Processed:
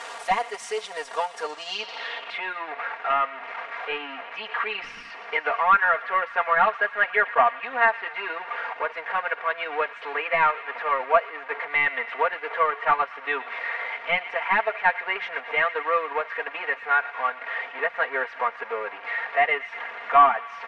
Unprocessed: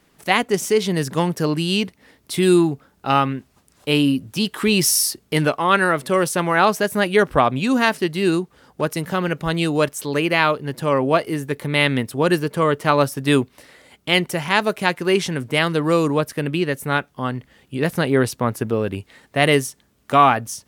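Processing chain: zero-crossing step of -20 dBFS; HPF 660 Hz 24 dB/oct; de-esser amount 70%; comb 4.3 ms, depth 98%; reverse; upward compressor, threshold -29 dBFS; reverse; transient shaper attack +2 dB, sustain -7 dB; air absorption 76 m; on a send: thin delay 0.117 s, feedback 78%, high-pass 1900 Hz, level -13 dB; on the sum: low-pass sweep 9300 Hz -> 2100 Hz, 1.42–2.47; gain -3.5 dB

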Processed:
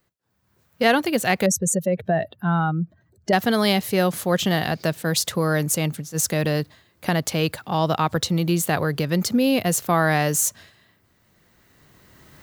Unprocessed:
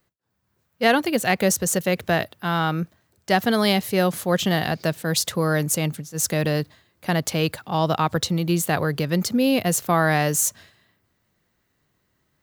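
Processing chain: 1.46–3.33 spectral contrast raised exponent 2; recorder AGC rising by 11 dB/s

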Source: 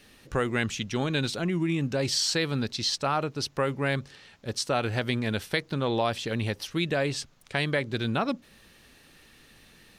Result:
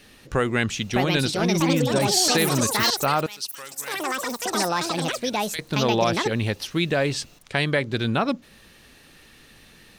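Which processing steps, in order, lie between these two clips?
3.26–5.59 pre-emphasis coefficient 0.97; echoes that change speed 0.725 s, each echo +7 st, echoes 3; gain +4.5 dB

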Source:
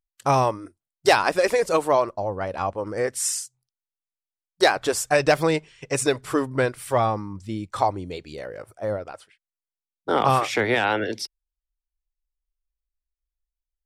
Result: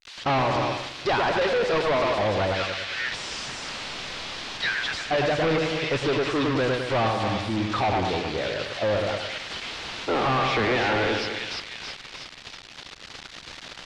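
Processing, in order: switching spikes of -13.5 dBFS; 2.54–4.98 steep high-pass 1400 Hz 48 dB/oct; split-band echo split 2100 Hz, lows 0.105 s, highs 0.327 s, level -6.5 dB; sample leveller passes 2; hard clip -20.5 dBFS, distortion -6 dB; LPF 4100 Hz 24 dB/oct

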